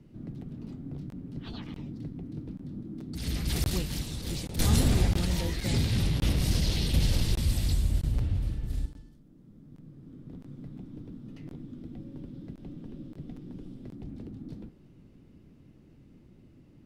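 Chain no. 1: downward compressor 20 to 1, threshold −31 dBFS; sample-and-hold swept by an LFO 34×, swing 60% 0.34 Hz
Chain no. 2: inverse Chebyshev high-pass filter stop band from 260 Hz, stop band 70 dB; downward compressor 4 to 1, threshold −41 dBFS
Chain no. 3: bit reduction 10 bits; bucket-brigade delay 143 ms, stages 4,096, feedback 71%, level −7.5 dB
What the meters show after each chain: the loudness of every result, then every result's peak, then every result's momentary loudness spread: −40.0, −42.5, −30.0 LKFS; −24.5, −26.0, −11.0 dBFS; 19, 15, 18 LU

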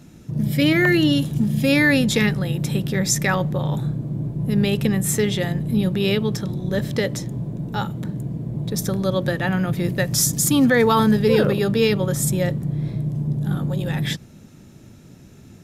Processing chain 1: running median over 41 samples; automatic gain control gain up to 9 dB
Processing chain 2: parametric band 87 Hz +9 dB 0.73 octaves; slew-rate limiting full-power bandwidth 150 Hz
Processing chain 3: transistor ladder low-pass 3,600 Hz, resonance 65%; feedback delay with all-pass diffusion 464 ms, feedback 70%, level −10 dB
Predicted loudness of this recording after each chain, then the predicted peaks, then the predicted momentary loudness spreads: −15.0, −20.5, −30.0 LKFS; −2.0, −5.0, −12.5 dBFS; 8, 9, 13 LU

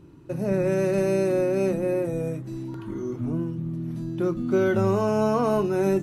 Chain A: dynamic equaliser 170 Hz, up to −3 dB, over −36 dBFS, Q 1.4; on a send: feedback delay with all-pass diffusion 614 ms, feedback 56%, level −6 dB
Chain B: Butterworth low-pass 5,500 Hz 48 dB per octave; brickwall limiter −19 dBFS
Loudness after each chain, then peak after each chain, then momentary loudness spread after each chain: −24.5, −28.5 LKFS; −10.5, −19.0 dBFS; 8, 6 LU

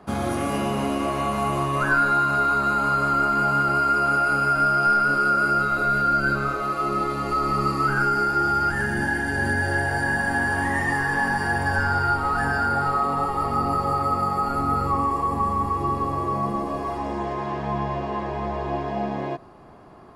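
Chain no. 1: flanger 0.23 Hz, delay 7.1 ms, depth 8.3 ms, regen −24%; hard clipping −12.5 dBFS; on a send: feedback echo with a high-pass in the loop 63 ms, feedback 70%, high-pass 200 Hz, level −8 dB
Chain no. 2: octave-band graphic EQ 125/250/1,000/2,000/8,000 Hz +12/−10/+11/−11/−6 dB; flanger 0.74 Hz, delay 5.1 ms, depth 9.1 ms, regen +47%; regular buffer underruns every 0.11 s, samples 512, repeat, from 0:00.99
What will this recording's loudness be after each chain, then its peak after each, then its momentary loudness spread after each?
−24.5, −24.0 LKFS; −11.0, −10.5 dBFS; 9, 6 LU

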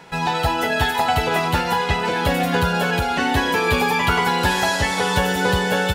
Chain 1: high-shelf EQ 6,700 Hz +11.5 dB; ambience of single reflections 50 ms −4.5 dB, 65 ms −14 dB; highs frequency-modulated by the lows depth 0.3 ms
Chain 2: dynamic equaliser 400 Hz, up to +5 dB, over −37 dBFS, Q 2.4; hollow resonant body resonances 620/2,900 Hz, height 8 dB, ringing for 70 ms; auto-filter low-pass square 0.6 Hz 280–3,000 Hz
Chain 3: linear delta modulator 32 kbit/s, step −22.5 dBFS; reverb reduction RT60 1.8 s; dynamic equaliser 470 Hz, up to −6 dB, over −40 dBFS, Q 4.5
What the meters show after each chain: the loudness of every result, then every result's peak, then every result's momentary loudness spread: −17.0, −18.0, −22.0 LKFS; −4.5, −2.5, −7.0 dBFS; 3, 8, 2 LU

